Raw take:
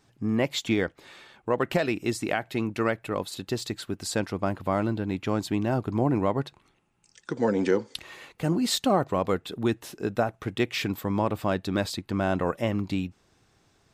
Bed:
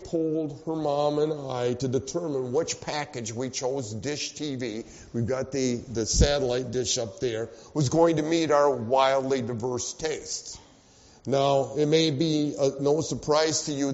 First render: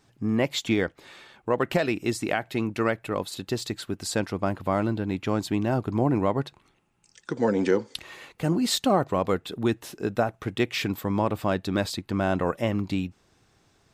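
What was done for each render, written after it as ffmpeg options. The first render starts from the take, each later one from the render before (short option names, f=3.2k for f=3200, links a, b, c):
-af "volume=1dB"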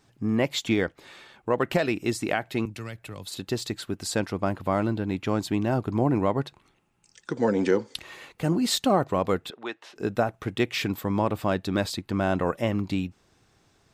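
-filter_complex "[0:a]asettb=1/sr,asplit=3[a][b][c];[a]atrim=end=2.654[d];[b]atrim=start=2.65:end=3.27,asetpts=PTS-STARTPTS,afade=t=in:d=0.004:c=qsin,afade=t=out:st=0.616:d=0.004:c=qsin,acrossover=split=140|3000[e][f][g];[f]acompressor=threshold=-46dB:ratio=2.5:attack=3.2:release=140:knee=2.83:detection=peak[h];[e][h][g]amix=inputs=3:normalize=0[i];[c]atrim=start=3.266[j];[d][i]acrossfade=d=0.004:c1=hsin:c2=qsin[k];[k][j]acrossfade=d=0.004:c1=qsin:c2=hsin,asettb=1/sr,asplit=3[l][m][n];[l]atrim=end=9.504[o];[m]atrim=start=9.5:end=9.96,asetpts=PTS-STARTPTS,afade=t=in:d=0.004:c=qsin,afade=t=out:st=0.456:d=0.004:c=qsin,highpass=660,lowpass=3.7k[p];[n]atrim=start=9.956[q];[o][p]acrossfade=d=0.004:c1=hsin:c2=qsin[r];[r][q]acrossfade=d=0.004:c1=qsin:c2=hsin"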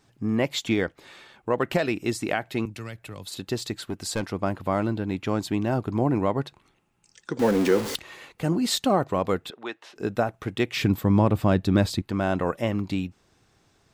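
-filter_complex "[0:a]asettb=1/sr,asplit=3[a][b][c];[a]atrim=end=3.744[d];[b]atrim=start=3.74:end=4.27,asetpts=PTS-STARTPTS,afade=t=in:d=0.004:c=qsin,afade=t=out:st=0.526:d=0.004:c=qsin,aeval=exprs='clip(val(0),-1,0.0668)':c=same[e];[c]atrim=start=4.266[f];[d][e]acrossfade=d=0.004:c1=hsin:c2=qsin[g];[g][f]acrossfade=d=0.004:c1=qsin:c2=hsin,asettb=1/sr,asplit=3[h][i][j];[h]atrim=end=7.394[k];[i]atrim=start=7.39:end=7.96,asetpts=PTS-STARTPTS,afade=t=in:d=0.004:c=qsin,afade=t=out:st=0.566:d=0.004:c=qsin,aeval=exprs='val(0)+0.5*0.0501*sgn(val(0))':c=same[l];[j]atrim=start=7.956[m];[k][l]acrossfade=d=0.004:c1=hsin:c2=qsin[n];[n][m]acrossfade=d=0.004:c1=qsin:c2=hsin,asettb=1/sr,asplit=3[o][p][q];[o]atrim=end=10.764[r];[p]atrim=start=10.76:end=12.02,asetpts=PTS-STARTPTS,afade=t=in:d=0.004:c=qsin,afade=t=out:st=1.256:d=0.004:c=qsin,lowshelf=f=270:g=11[s];[q]atrim=start=12.016[t];[r][s]acrossfade=d=0.004:c1=hsin:c2=qsin[u];[u][t]acrossfade=d=0.004:c1=qsin:c2=hsin"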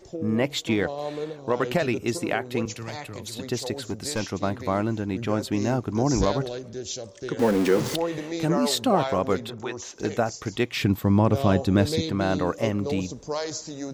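-filter_complex "[1:a]volume=-7dB[a];[0:a][a]amix=inputs=2:normalize=0"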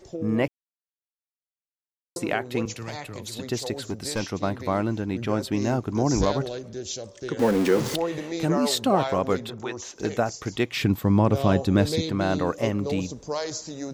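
-filter_complex "[0:a]asettb=1/sr,asplit=3[a][b][c];[a]atrim=end=3.914[d];[b]atrim=start=3.91:end=5.64,asetpts=PTS-STARTPTS,afade=t=in:d=0.004:c=qsin,afade=t=out:st=1.726:d=0.004:c=qsin,bandreject=f=6.8k:w=12[e];[c]atrim=start=5.636[f];[d][e]acrossfade=d=0.004:c1=hsin:c2=qsin[g];[g][f]acrossfade=d=0.004:c1=qsin:c2=hsin,asplit=3[h][i][j];[h]atrim=end=0.48,asetpts=PTS-STARTPTS,afade=t=out:st=0.476:d=0.004:c=hsin[k];[i]atrim=start=0.48:end=2.16,asetpts=PTS-STARTPTS,volume=0[l];[j]atrim=start=2.16,asetpts=PTS-STARTPTS,afade=t=in:d=0.004:c=hsin[m];[k][l][m]concat=n=3:v=0:a=1"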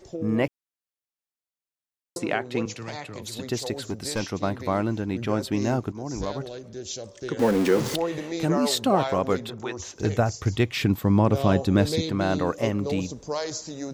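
-filter_complex "[0:a]asettb=1/sr,asplit=3[a][b][c];[a]atrim=end=2.184[d];[b]atrim=start=2.18:end=3.22,asetpts=PTS-STARTPTS,afade=t=in:d=0.004:c=qsin,afade=t=out:st=1.036:d=0.004:c=qsin,highpass=100,lowpass=7.6k[e];[c]atrim=start=3.216[f];[d][e]acrossfade=d=0.004:c1=hsin:c2=qsin[g];[g][f]acrossfade=d=0.004:c1=qsin:c2=hsin,asettb=1/sr,asplit=3[h][i][j];[h]atrim=end=9.794[k];[i]atrim=start=9.79:end=10.71,asetpts=PTS-STARTPTS,afade=t=in:d=0.004:c=qsin,afade=t=out:st=0.916:d=0.004:c=qsin,equalizer=f=88:t=o:w=1.1:g=14.5[l];[j]atrim=start=10.706[m];[k][l]acrossfade=d=0.004:c1=hsin:c2=qsin[n];[n][m]acrossfade=d=0.004:c1=qsin:c2=hsin,asplit=2[o][p];[o]atrim=end=5.92,asetpts=PTS-STARTPTS,afade=t=out:st=5.916:d=0.004:c=hsin:silence=0.199526[q];[p]atrim=start=5.92,asetpts=PTS-STARTPTS,afade=t=in:d=1.21:silence=0.199526[r];[q][r]concat=n=2:v=0:a=1"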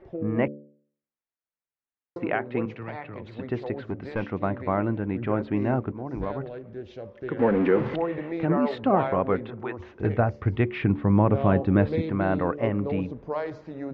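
-af "lowpass=f=2.3k:w=0.5412,lowpass=f=2.3k:w=1.3066,bandreject=f=72.88:t=h:w=4,bandreject=f=145.76:t=h:w=4,bandreject=f=218.64:t=h:w=4,bandreject=f=291.52:t=h:w=4,bandreject=f=364.4:t=h:w=4,bandreject=f=437.28:t=h:w=4,bandreject=f=510.16:t=h:w=4,bandreject=f=583.04:t=h:w=4"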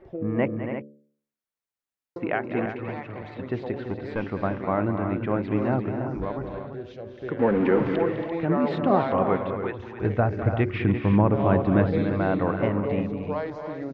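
-af "aecho=1:1:204|277|341:0.266|0.335|0.335"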